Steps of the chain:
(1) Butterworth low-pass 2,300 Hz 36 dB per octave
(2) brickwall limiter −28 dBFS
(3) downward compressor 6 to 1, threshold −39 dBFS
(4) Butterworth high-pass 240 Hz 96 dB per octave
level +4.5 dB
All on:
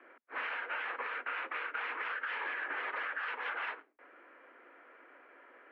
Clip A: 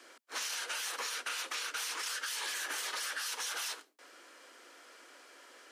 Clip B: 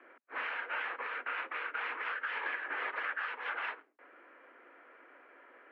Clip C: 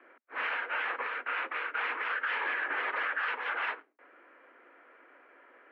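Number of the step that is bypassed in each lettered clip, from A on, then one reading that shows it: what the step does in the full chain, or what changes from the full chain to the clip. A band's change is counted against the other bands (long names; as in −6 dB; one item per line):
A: 1, 4 kHz band +16.0 dB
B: 2, average gain reduction 1.5 dB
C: 3, average gain reduction 3.0 dB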